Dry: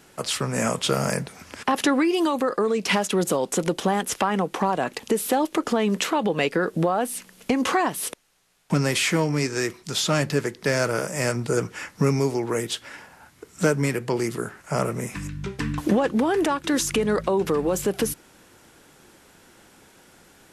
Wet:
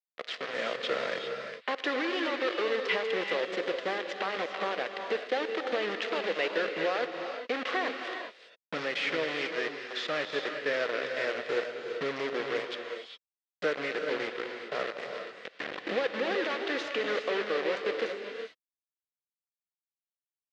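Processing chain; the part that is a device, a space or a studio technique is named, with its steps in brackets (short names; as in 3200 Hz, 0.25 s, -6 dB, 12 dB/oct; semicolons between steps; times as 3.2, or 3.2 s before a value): hand-held game console (bit-crush 4-bit; speaker cabinet 440–4000 Hz, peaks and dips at 490 Hz +6 dB, 910 Hz -8 dB, 1900 Hz +5 dB); non-linear reverb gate 0.43 s rising, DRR 4.5 dB; gain -8.5 dB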